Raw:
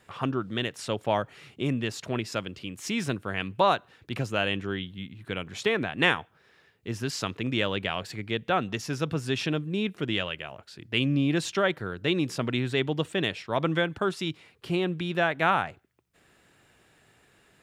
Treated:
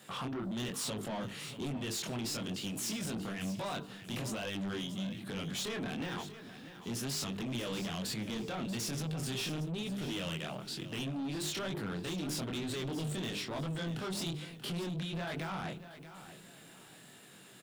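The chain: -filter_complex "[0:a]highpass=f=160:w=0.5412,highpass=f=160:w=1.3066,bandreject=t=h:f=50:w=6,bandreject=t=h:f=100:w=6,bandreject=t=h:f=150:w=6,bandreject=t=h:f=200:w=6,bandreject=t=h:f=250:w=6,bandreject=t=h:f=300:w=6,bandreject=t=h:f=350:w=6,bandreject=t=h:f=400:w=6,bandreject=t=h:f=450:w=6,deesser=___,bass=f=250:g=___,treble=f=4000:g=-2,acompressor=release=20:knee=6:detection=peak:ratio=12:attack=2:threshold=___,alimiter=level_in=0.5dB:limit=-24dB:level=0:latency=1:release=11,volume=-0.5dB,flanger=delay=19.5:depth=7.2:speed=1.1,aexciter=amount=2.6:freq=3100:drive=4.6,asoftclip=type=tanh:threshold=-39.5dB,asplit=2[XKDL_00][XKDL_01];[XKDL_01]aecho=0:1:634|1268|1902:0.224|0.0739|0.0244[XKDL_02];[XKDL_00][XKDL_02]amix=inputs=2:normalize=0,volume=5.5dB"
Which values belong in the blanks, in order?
0.75, 12, -33dB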